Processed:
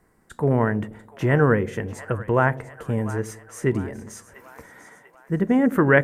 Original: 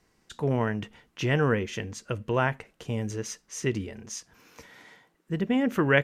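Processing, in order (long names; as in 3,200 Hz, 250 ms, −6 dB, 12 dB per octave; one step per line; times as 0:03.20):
flat-topped bell 4,000 Hz −14 dB
echo with a time of its own for lows and highs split 620 Hz, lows 84 ms, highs 693 ms, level −15 dB
level +6 dB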